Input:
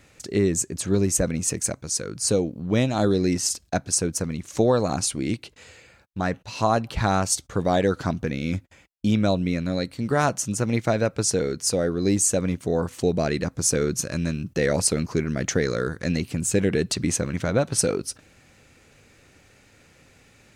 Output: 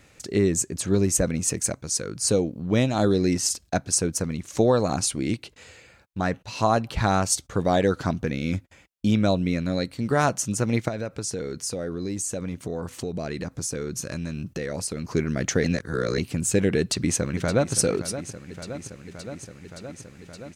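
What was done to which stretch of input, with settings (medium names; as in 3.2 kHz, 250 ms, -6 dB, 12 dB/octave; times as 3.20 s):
10.88–15.11 s: compression 4:1, threshold -27 dBFS
15.64–16.18 s: reverse
16.79–17.75 s: echo throw 570 ms, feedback 80%, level -12 dB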